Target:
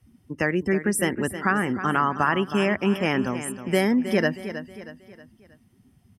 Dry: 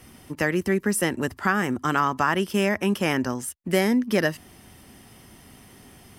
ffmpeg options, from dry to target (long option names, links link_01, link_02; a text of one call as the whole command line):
ffmpeg -i in.wav -filter_complex "[0:a]afftdn=noise_reduction=21:noise_floor=-37,asplit=2[link_01][link_02];[link_02]aecho=0:1:317|634|951|1268:0.266|0.114|0.0492|0.0212[link_03];[link_01][link_03]amix=inputs=2:normalize=0" out.wav